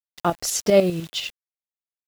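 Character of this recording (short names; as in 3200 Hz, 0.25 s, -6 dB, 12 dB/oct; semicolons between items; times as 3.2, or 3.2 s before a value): tremolo saw up 10 Hz, depth 65%; a quantiser's noise floor 8-bit, dither none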